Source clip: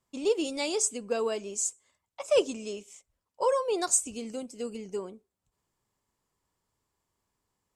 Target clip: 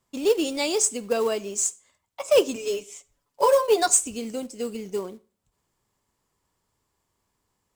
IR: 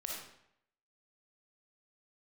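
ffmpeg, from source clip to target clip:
-filter_complex "[0:a]asettb=1/sr,asplit=3[s0][s1][s2];[s0]atrim=end=2.554[s3];[s1]atrim=start=2.55:end=3.88,asetpts=PTS-STARTPTS,afade=t=in:d=0.004:c=qsin,afade=t=out:st=1.326:d=0.004:c=qsin,aecho=1:1:7:0.99,atrim=end_sample=58653[s4];[s2]atrim=start=3.876[s5];[s3][s4]acrossfade=d=0.004:c1=hsin:c2=qsin[s6];[s6][s5]acrossfade=d=0.004:c1=qsin:c2=hsin,acrusher=bits=5:mode=log:mix=0:aa=0.000001,asplit=2[s7][s8];[1:a]atrim=start_sample=2205,asetrate=74970,aresample=44100[s9];[s8][s9]afir=irnorm=-1:irlink=0,volume=0.237[s10];[s7][s10]amix=inputs=2:normalize=0,volume=1.68"

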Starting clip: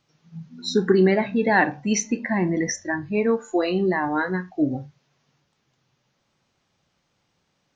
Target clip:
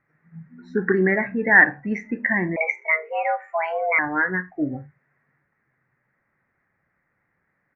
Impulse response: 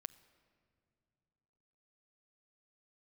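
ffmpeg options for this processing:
-filter_complex "[0:a]firequalizer=gain_entry='entry(950,0);entry(1900,14);entry(3100,-28)':delay=0.05:min_phase=1,asettb=1/sr,asplit=3[s0][s1][s2];[s0]atrim=end=2.564[s3];[s1]atrim=start=2.56:end=3.99,asetpts=PTS-STARTPTS,afade=t=in:d=0.004:c=qsin,afade=t=out:st=1.426:d=0.004:c=qsin,afreqshift=320[s4];[s2]atrim=start=3.986[s5];[s3][s4]acrossfade=d=0.004:c1=hsin:c2=qsin[s6];[s6][s5]acrossfade=d=0.004:c1=qsin:c2=hsin,volume=0.708"

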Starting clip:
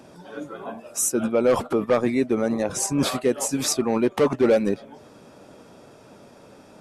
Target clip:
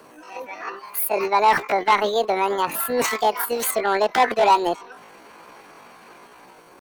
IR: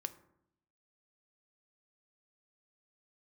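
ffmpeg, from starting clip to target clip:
-filter_complex "[0:a]acrossover=split=270|590|2800[s0][s1][s2][s3];[s2]dynaudnorm=f=220:g=5:m=2[s4];[s0][s1][s4][s3]amix=inputs=4:normalize=0,asetrate=76340,aresample=44100,atempo=0.577676"

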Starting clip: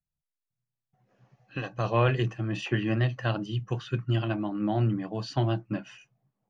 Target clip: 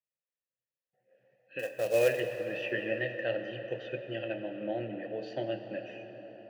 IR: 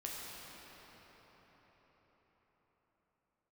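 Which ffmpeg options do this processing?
-filter_complex "[0:a]asplit=3[s0][s1][s2];[s0]bandpass=f=530:t=q:w=8,volume=1[s3];[s1]bandpass=f=1840:t=q:w=8,volume=0.501[s4];[s2]bandpass=f=2480:t=q:w=8,volume=0.355[s5];[s3][s4][s5]amix=inputs=3:normalize=0,asettb=1/sr,asplit=3[s6][s7][s8];[s6]atrim=end=1.594[s9];[s7]atrim=start=1.59:end=2.2,asetpts=PTS-STARTPTS,afade=t=in:d=0.004:c=qsin,afade=t=out:st=0.606:d=0.004:c=qsin,acrusher=bits=4:mode=log:mix=0:aa=0.000001[s10];[s8]atrim=start=2.196[s11];[s9][s10]acrossfade=d=0.004:c1=hsin:c2=qsin[s12];[s12][s11]acrossfade=d=0.004:c1=qsin:c2=hsin,asplit=2[s13][s14];[1:a]atrim=start_sample=2205[s15];[s14][s15]afir=irnorm=-1:irlink=0,volume=0.75[s16];[s13][s16]amix=inputs=2:normalize=0,volume=1.78"

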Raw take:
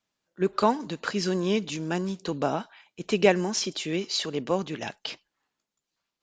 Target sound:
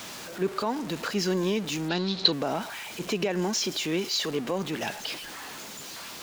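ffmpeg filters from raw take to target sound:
-filter_complex "[0:a]aeval=exprs='val(0)+0.5*0.0211*sgn(val(0))':c=same,lowshelf=f=71:g=-12,alimiter=limit=0.133:level=0:latency=1:release=76,asplit=3[s0][s1][s2];[s0]afade=t=out:st=1.88:d=0.02[s3];[s1]lowpass=f=4100:t=q:w=11,afade=t=in:st=1.88:d=0.02,afade=t=out:st=2.31:d=0.02[s4];[s2]afade=t=in:st=2.31:d=0.02[s5];[s3][s4][s5]amix=inputs=3:normalize=0"

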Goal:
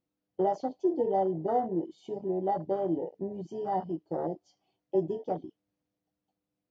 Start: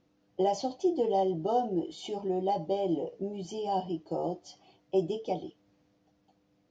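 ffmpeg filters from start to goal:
-af "afwtdn=0.0251"

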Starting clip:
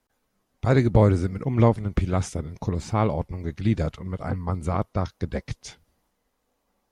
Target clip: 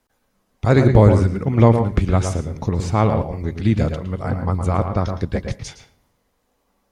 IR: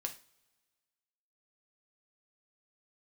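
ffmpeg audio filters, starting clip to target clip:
-filter_complex "[0:a]asplit=2[s0][s1];[1:a]atrim=start_sample=2205,highshelf=f=4500:g=-11.5,adelay=112[s2];[s1][s2]afir=irnorm=-1:irlink=0,volume=0.562[s3];[s0][s3]amix=inputs=2:normalize=0,volume=1.78"

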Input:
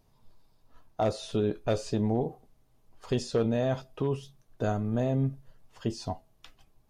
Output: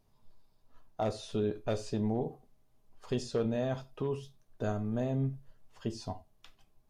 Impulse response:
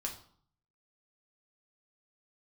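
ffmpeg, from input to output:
-filter_complex "[0:a]asplit=2[s0][s1];[1:a]atrim=start_sample=2205,atrim=end_sample=4410[s2];[s1][s2]afir=irnorm=-1:irlink=0,volume=0.447[s3];[s0][s3]amix=inputs=2:normalize=0,volume=0.422"

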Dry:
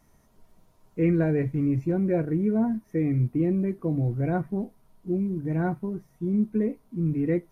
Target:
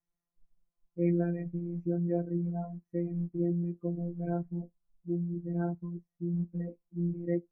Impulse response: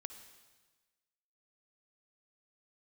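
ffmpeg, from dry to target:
-af "afftdn=nr=22:nf=-34,afftfilt=real='hypot(re,im)*cos(PI*b)':imag='0':win_size=1024:overlap=0.75,volume=0.562"

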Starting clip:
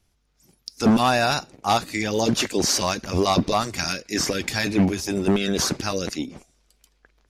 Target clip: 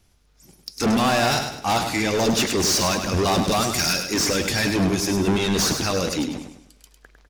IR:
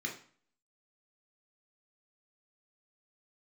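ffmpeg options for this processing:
-filter_complex "[0:a]asettb=1/sr,asplit=3[s0][s1][s2];[s0]atrim=end=3.464[s3];[s1]atrim=start=3.46:end=4.04,asetpts=PTS-STARTPTS,afade=t=in:d=0.004:c=qsin,afade=t=out:st=0.576:d=0.004:c=qsin,aemphasis=mode=production:type=cd[s4];[s2]atrim=start=4.036[s5];[s3][s4]acrossfade=d=0.004:c1=hsin:c2=qsin[s6];[s6][s5]acrossfade=d=0.004:c1=qsin:c2=hsin,asoftclip=type=tanh:threshold=0.0631,aecho=1:1:102|204|306|408|510:0.447|0.174|0.0679|0.0265|0.0103,volume=2.11"

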